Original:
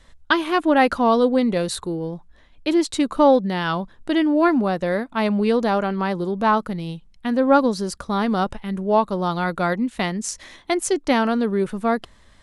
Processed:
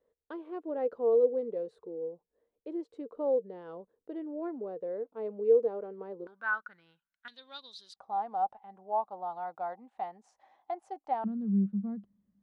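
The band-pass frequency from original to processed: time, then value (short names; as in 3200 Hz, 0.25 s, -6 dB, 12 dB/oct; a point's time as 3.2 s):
band-pass, Q 13
460 Hz
from 6.27 s 1500 Hz
from 7.28 s 3700 Hz
from 7.96 s 780 Hz
from 11.24 s 200 Hz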